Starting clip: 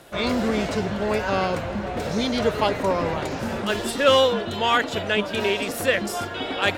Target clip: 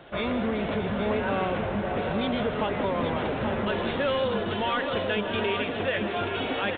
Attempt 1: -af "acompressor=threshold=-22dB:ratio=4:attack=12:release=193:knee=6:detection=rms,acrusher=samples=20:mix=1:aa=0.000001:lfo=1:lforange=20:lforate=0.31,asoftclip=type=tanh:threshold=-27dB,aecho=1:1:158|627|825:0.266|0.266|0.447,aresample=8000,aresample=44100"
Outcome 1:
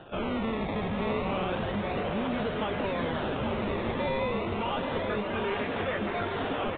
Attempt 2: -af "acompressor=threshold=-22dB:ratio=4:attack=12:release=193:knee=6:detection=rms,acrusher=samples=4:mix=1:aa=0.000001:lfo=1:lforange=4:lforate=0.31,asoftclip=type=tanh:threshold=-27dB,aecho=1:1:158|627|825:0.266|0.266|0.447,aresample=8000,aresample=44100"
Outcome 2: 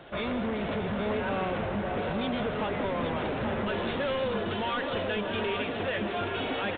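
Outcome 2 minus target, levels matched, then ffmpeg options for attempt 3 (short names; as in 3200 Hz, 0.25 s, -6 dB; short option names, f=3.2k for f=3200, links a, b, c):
soft clip: distortion +9 dB
-af "acompressor=threshold=-22dB:ratio=4:attack=12:release=193:knee=6:detection=rms,acrusher=samples=4:mix=1:aa=0.000001:lfo=1:lforange=4:lforate=0.31,asoftclip=type=tanh:threshold=-19dB,aecho=1:1:158|627|825:0.266|0.266|0.447,aresample=8000,aresample=44100"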